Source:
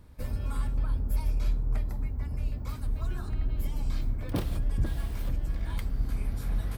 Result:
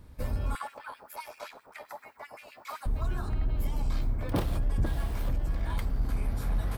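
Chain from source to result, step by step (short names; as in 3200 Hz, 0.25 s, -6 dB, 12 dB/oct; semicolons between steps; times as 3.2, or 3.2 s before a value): soft clip -20 dBFS, distortion -22 dB; 0.55–2.86 LFO high-pass sine 7.7 Hz 610–2400 Hz; dynamic EQ 830 Hz, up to +6 dB, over -56 dBFS, Q 0.75; gain +1.5 dB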